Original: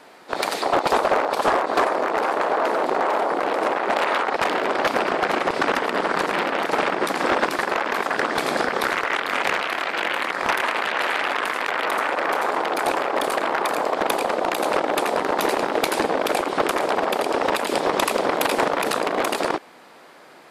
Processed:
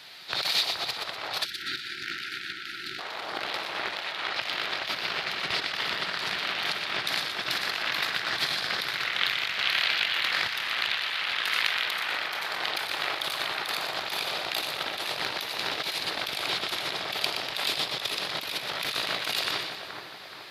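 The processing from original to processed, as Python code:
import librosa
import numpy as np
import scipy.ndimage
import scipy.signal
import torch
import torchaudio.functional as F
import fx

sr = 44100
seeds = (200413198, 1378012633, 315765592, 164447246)

p1 = scipy.signal.sosfilt(scipy.signal.butter(2, 58.0, 'highpass', fs=sr, output='sos'), x)
p2 = fx.high_shelf(p1, sr, hz=2200.0, db=11.0)
p3 = fx.rev_freeverb(p2, sr, rt60_s=0.89, hf_ratio=0.6, predelay_ms=15, drr_db=7.5)
p4 = fx.over_compress(p3, sr, threshold_db=-22.0, ratio=-0.5)
p5 = p4 + fx.echo_split(p4, sr, split_hz=2000.0, low_ms=425, high_ms=121, feedback_pct=52, wet_db=-7, dry=0)
p6 = fx.spec_erase(p5, sr, start_s=1.44, length_s=1.55, low_hz=400.0, high_hz=1300.0)
p7 = fx.graphic_eq(p6, sr, hz=(125, 250, 500, 1000, 4000, 8000), db=(9, -11, -9, -6, 10, -11))
y = F.gain(torch.from_numpy(p7), -7.0).numpy()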